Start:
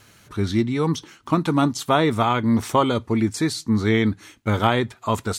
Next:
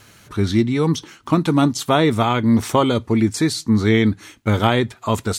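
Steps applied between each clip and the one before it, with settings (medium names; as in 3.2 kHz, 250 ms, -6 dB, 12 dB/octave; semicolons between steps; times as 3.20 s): dynamic bell 1.1 kHz, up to -4 dB, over -32 dBFS, Q 1; trim +4 dB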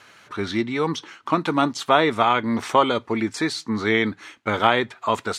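band-pass filter 1.4 kHz, Q 0.56; trim +2.5 dB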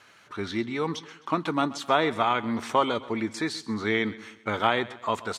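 feedback delay 130 ms, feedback 44%, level -18 dB; trim -5.5 dB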